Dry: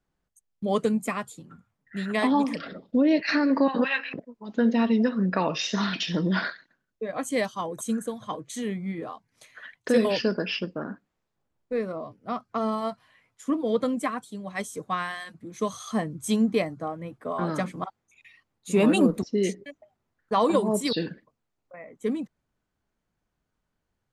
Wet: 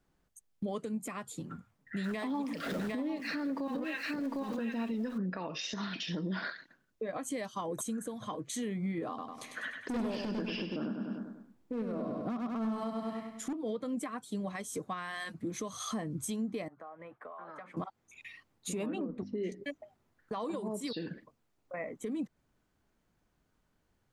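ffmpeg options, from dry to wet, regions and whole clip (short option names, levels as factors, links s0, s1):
-filter_complex "[0:a]asettb=1/sr,asplit=3[s0][s1][s2];[s0]atrim=end=2.044[s3];[s1]atrim=start=2.04:end=5.18,asetpts=PTS-STARTPTS,afade=t=in:d=0.004:c=qsin,afade=t=out:st=3.136:d=0.004:c=qsin,aeval=exprs='val(0)+0.5*0.0112*sgn(val(0))':c=same,aecho=1:1:754:0.501,atrim=end_sample=138474[s4];[s2]atrim=start=5.176[s5];[s3][s4]acrossfade=d=0.004:c1=hsin:c2=qsin[s6];[s6][s5]acrossfade=d=0.004:c1=qsin:c2=hsin,asettb=1/sr,asplit=3[s7][s8][s9];[s7]atrim=end=9.084[s10];[s8]atrim=start=9.08:end=13.53,asetpts=PTS-STARTPTS,afade=t=in:d=0.004:c=qsin,afade=t=out:st=4.446:d=0.004:c=qsin,equalizer=f=240:w=1.6:g=11.5,asoftclip=type=hard:threshold=0.133,aecho=1:1:99|198|297|396|495|594:0.501|0.241|0.115|0.0554|0.0266|0.0128,atrim=end_sample=196245[s11];[s9]atrim=start=13.526[s12];[s10][s11]acrossfade=d=0.004:c1=hsin:c2=qsin[s13];[s13][s12]acrossfade=d=0.004:c1=qsin:c2=hsin,asettb=1/sr,asplit=3[s14][s15][s16];[s14]atrim=end=16.684[s17];[s15]atrim=start=16.68:end=17.77,asetpts=PTS-STARTPTS,afade=t=in:d=0.004:c=qsin,afade=t=out:st=1.086:d=0.004:c=qsin,acrossover=split=600 2200:gain=0.0891 1 0.0794[s18][s19][s20];[s18][s19][s20]amix=inputs=3:normalize=0,acompressor=threshold=0.00398:ratio=8:attack=3.2:release=140:knee=1:detection=peak[s21];[s16]atrim=start=17.766[s22];[s17][s21]acrossfade=d=0.004:c1=hsin:c2=qsin[s23];[s23][s22]acrossfade=d=0.004:c1=qsin:c2=hsin,asettb=1/sr,asplit=3[s24][s25][s26];[s24]atrim=end=18.864[s27];[s25]atrim=start=18.86:end=19.52,asetpts=PTS-STARTPTS,afade=t=in:d=0.004:c=qsin,afade=t=out:st=0.656:d=0.004:c=qsin,lowpass=2400,bandreject=f=50:t=h:w=6,bandreject=f=100:t=h:w=6,bandreject=f=150:t=h:w=6,bandreject=f=200:t=h:w=6,bandreject=f=250:t=h:w=6,bandreject=f=300:t=h:w=6[s28];[s26]atrim=start=19.516[s29];[s27][s28]acrossfade=d=0.004:c1=hsin:c2=qsin[s30];[s30][s29]acrossfade=d=0.004:c1=qsin:c2=hsin,equalizer=f=300:t=o:w=0.77:g=2.5,acompressor=threshold=0.0282:ratio=6,alimiter=level_in=2.51:limit=0.0631:level=0:latency=1:release=252,volume=0.398,volume=1.58"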